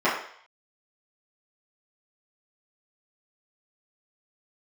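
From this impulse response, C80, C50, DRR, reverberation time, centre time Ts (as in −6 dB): 7.5 dB, 4.5 dB, −11.5 dB, 0.60 s, 40 ms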